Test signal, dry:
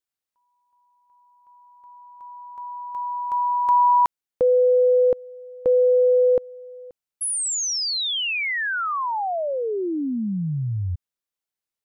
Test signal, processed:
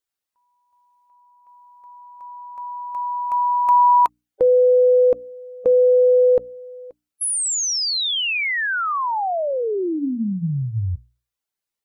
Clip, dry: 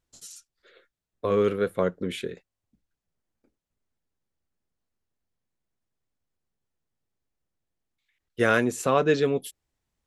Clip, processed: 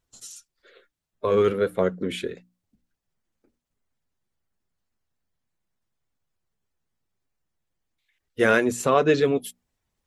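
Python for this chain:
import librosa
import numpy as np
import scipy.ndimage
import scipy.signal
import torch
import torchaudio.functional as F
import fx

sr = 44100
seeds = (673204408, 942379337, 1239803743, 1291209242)

y = fx.spec_quant(x, sr, step_db=15)
y = fx.hum_notches(y, sr, base_hz=60, count=5)
y = y * 10.0 ** (3.0 / 20.0)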